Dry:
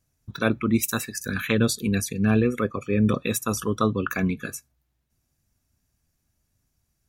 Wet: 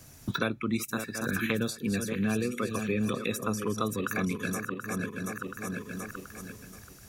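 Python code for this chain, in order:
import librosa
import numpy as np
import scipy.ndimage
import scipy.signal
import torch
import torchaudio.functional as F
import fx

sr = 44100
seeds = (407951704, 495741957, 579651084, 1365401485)

y = fx.reverse_delay_fb(x, sr, ms=365, feedback_pct=46, wet_db=-10.0)
y = fx.low_shelf(y, sr, hz=73.0, db=-10.5)
y = fx.band_squash(y, sr, depth_pct=100)
y = F.gain(torch.from_numpy(y), -6.5).numpy()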